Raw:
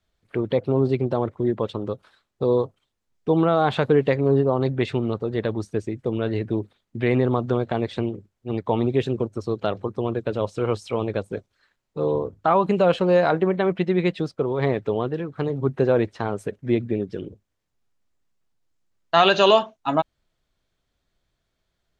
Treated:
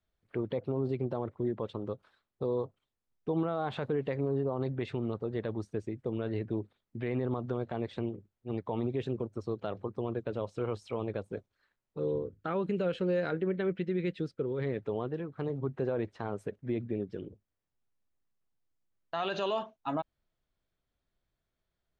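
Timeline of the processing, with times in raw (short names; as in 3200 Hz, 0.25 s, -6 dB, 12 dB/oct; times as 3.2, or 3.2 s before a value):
11.99–14.78 band shelf 850 Hz -11.5 dB 1.1 oct
whole clip: high shelf 3600 Hz -7.5 dB; limiter -14 dBFS; gain -8.5 dB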